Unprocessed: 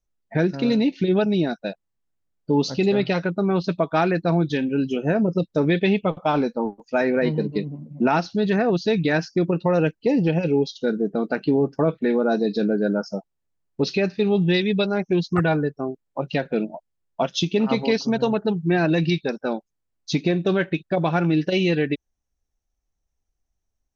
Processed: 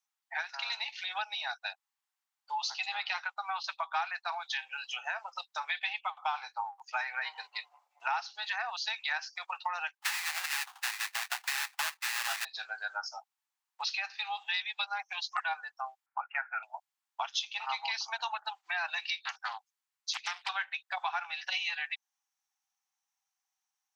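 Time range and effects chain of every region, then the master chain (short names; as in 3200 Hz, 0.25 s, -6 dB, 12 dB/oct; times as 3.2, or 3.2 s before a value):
9.97–12.45 tilt -2.5 dB/oct + sample-rate reducer 2200 Hz, jitter 20%
16.06–16.63 steep low-pass 2400 Hz 72 dB/oct + bell 1400 Hz +14.5 dB 0.28 oct
19.25–20.49 bell 420 Hz -12.5 dB 1.3 oct + Doppler distortion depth 0.95 ms
whole clip: Chebyshev high-pass 780 Hz, order 6; compressor 3:1, threshold -37 dBFS; gain +3.5 dB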